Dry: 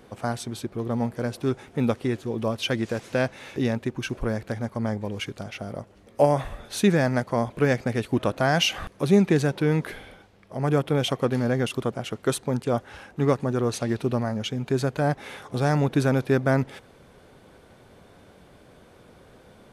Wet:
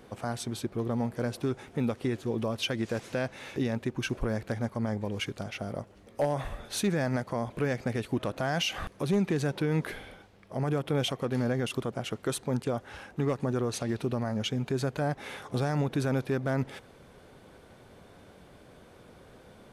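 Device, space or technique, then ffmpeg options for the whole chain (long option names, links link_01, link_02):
clipper into limiter: -af "asoftclip=type=hard:threshold=-11.5dB,alimiter=limit=-18.5dB:level=0:latency=1:release=109,volume=-1.5dB"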